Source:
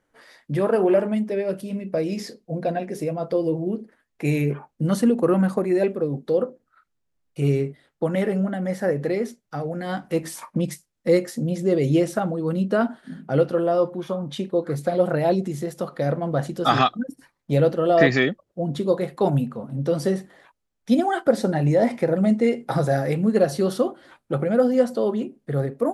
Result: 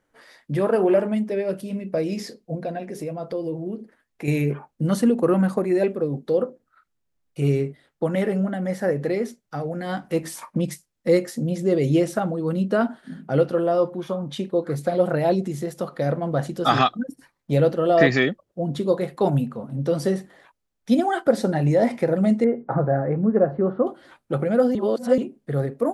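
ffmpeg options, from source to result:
-filter_complex "[0:a]asettb=1/sr,asplit=3[s0][s1][s2];[s0]atrim=end=2.554[s3];[s1]atrim=start=2.55:end=4.28,asetpts=PTS-STARTPTS,afade=t=in:d=0.004:c=qsin,afade=t=out:st=1.726:d=0.004:c=qsin,acompressor=threshold=0.0224:ratio=1.5:attack=3.2:release=140:knee=1:detection=peak[s4];[s2]atrim=start=4.276[s5];[s3][s4]acrossfade=d=0.004:c1=hsin:c2=qsin[s6];[s6][s5]acrossfade=d=0.004:c1=qsin:c2=hsin,asettb=1/sr,asplit=3[s7][s8][s9];[s7]atrim=end=22.444[s10];[s8]atrim=start=22.44:end=23.87,asetpts=PTS-STARTPTS,afade=t=in:d=0.004:c=qsin,afade=t=out:st=1.426:d=0.004:c=qsin,lowpass=f=1500:w=0.5412,lowpass=f=1500:w=1.3066[s11];[s9]atrim=start=23.866[s12];[s10][s11]acrossfade=d=0.004:c1=hsin:c2=qsin[s13];[s13][s12]acrossfade=d=0.004:c1=qsin:c2=hsin,asplit=3[s14][s15][s16];[s14]atrim=end=24.752[s17];[s15]atrim=start=24.748:end=25.182,asetpts=PTS-STARTPTS,areverse[s18];[s16]atrim=start=25.178[s19];[s17][s18]acrossfade=d=0.004:c1=hsin:c2=hsin[s20];[s20][s19]acrossfade=d=0.004:c1=hsin:c2=hsin"

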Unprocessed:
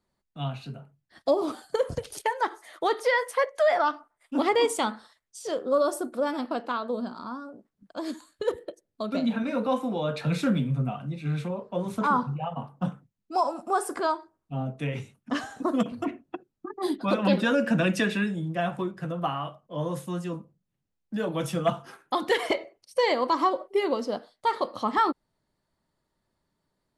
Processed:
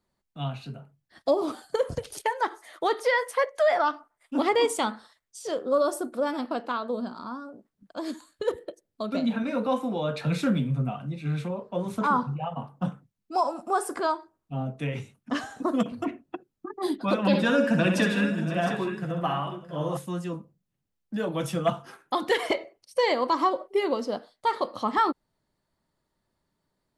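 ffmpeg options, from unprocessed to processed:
-filter_complex "[0:a]asettb=1/sr,asplit=3[s0][s1][s2];[s0]atrim=end=17.274[s3];[s1]atrim=start=17.27:end=19.97,asetpts=PTS-STARTPTS,afade=t=in:d=0.004:c=qsin,afade=t=out:st=2.696:d=0.004:c=qsin,aecho=1:1:64|162|518|667|709:0.501|0.119|0.126|0.178|0.282,atrim=end_sample=119070[s4];[s2]atrim=start=19.966[s5];[s3][s4]acrossfade=d=0.004:c1=hsin:c2=qsin[s6];[s6][s5]acrossfade=d=0.004:c1=qsin:c2=hsin"

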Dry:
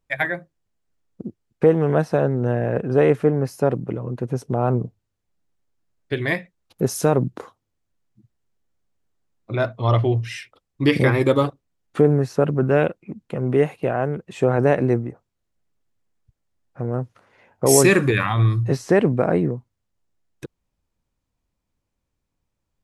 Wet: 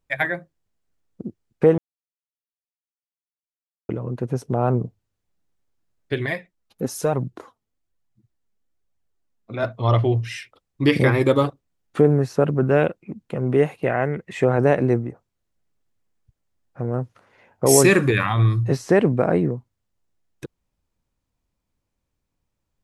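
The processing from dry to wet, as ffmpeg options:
-filter_complex "[0:a]asettb=1/sr,asplit=3[s0][s1][s2];[s0]atrim=end=6.264[s3];[s1]atrim=start=6.26:end=9.63,asetpts=PTS-STARTPTS,afade=t=in:d=0.004:c=qsin,afade=t=out:st=3.366:d=0.004:c=qsin,flanger=delay=0.9:depth=4.1:regen=37:speed=1.1:shape=triangular[s4];[s2]atrim=start=9.626[s5];[s3][s4]acrossfade=d=0.004:c1=hsin:c2=qsin[s6];[s6][s5]acrossfade=d=0.004:c1=qsin:c2=hsin,asettb=1/sr,asplit=3[s7][s8][s9];[s7]atrim=end=13.864[s10];[s8]atrim=start=13.86:end=14.45,asetpts=PTS-STARTPTS,afade=t=in:d=0.004:c=qsin,afade=t=out:st=0.586:d=0.004:c=qsin,equalizer=f=2000:t=o:w=0.4:g=15[s11];[s9]atrim=start=14.446[s12];[s10][s11]acrossfade=d=0.004:c1=hsin:c2=qsin[s13];[s13][s12]acrossfade=d=0.004:c1=qsin:c2=hsin,asplit=3[s14][s15][s16];[s14]atrim=end=1.78,asetpts=PTS-STARTPTS,afade=t=out:st=1.776:d=0.004:c=hsin[s17];[s15]atrim=start=1.78:end=3.89,asetpts=PTS-STARTPTS,volume=0[s18];[s16]atrim=start=3.89,asetpts=PTS-STARTPTS,afade=t=in:d=0.004:c=hsin[s19];[s17][s18][s19]concat=n=3:v=0:a=1"

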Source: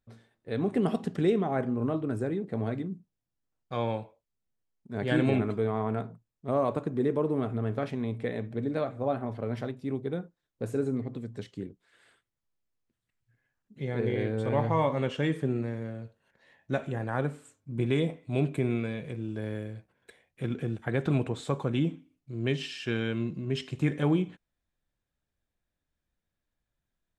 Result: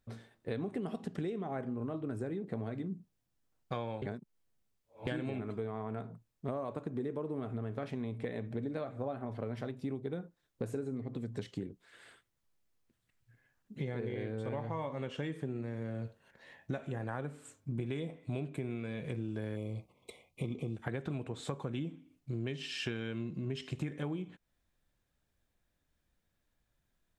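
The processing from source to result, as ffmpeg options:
-filter_complex "[0:a]asplit=3[s0][s1][s2];[s0]afade=t=out:st=19.55:d=0.02[s3];[s1]asuperstop=centerf=1600:order=20:qfactor=2.1,afade=t=in:st=19.55:d=0.02,afade=t=out:st=20.75:d=0.02[s4];[s2]afade=t=in:st=20.75:d=0.02[s5];[s3][s4][s5]amix=inputs=3:normalize=0,asplit=3[s6][s7][s8];[s6]atrim=end=4.022[s9];[s7]atrim=start=4.018:end=5.072,asetpts=PTS-STARTPTS,areverse[s10];[s8]atrim=start=5.068[s11];[s9][s10]acrossfade=d=0.004:c1=hsin:c2=hsin[s12];[s12][s11]acrossfade=d=0.004:c1=hsin:c2=hsin,acompressor=threshold=0.0112:ratio=12,volume=1.78"

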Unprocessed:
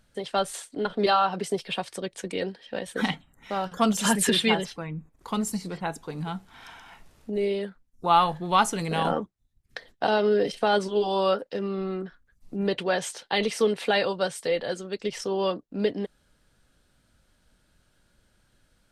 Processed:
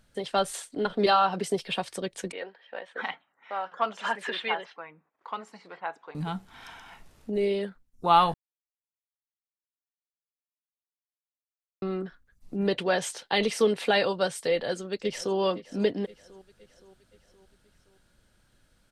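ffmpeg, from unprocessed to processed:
-filter_complex "[0:a]asettb=1/sr,asplit=3[s0][s1][s2];[s0]atrim=end=2.324[s3];[s1]atrim=start=2.32:end=6.15,asetpts=PTS-STARTPTS,afade=t=in:d=0.004:c=qsin,afade=t=out:st=3.826:d=0.004:c=qsin,highpass=730,lowpass=2000[s4];[s2]atrim=start=6.146[s5];[s3][s4]acrossfade=d=0.004:c1=hsin:c2=qsin[s6];[s6][s5]acrossfade=d=0.004:c1=qsin:c2=hsin,asplit=2[s7][s8];[s8]afade=t=in:st=14.51:d=0.01,afade=t=out:st=15.37:d=0.01,aecho=0:1:520|1040|1560|2080|2600:0.133352|0.0733437|0.040339|0.0221865|0.0122026[s9];[s7][s9]amix=inputs=2:normalize=0,asplit=3[s10][s11][s12];[s10]atrim=end=8.34,asetpts=PTS-STARTPTS,afade=t=out:st=8.336:d=0.004:c=hsin[s13];[s11]atrim=start=8.34:end=11.82,asetpts=PTS-STARTPTS,volume=0[s14];[s12]atrim=start=11.82,asetpts=PTS-STARTPTS,afade=t=in:d=0.004:c=hsin[s15];[s13][s14][s15]concat=n=3:v=0:a=1"

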